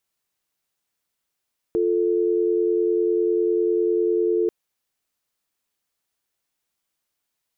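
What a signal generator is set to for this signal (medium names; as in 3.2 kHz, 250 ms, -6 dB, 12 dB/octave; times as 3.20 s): call progress tone dial tone, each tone -20.5 dBFS 2.74 s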